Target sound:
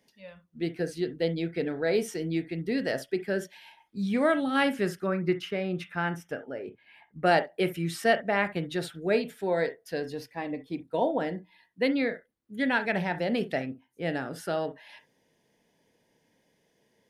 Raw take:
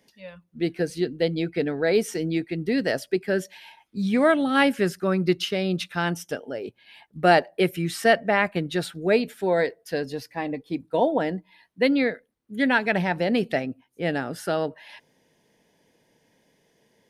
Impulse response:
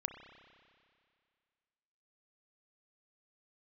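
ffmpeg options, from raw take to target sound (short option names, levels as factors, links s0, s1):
-filter_complex "[0:a]asettb=1/sr,asplit=3[s0][s1][s2];[s0]atrim=end=5.064[s3];[s1]atrim=start=5.06:end=7.26,asetpts=PTS-STARTPTS,afade=t=in:d=0.004:c=qsin,afade=t=out:st=2.196:d=0.004:c=qsin,highshelf=f=2800:t=q:w=1.5:g=-8[s4];[s2]atrim=start=7.256[s5];[s3][s4]acrossfade=d=0.004:c1=hsin:c2=qsin[s6];[s6][s5]acrossfade=d=0.004:c1=qsin:c2=hsin[s7];[1:a]atrim=start_sample=2205,atrim=end_sample=3087[s8];[s7][s8]afir=irnorm=-1:irlink=0,volume=0.631"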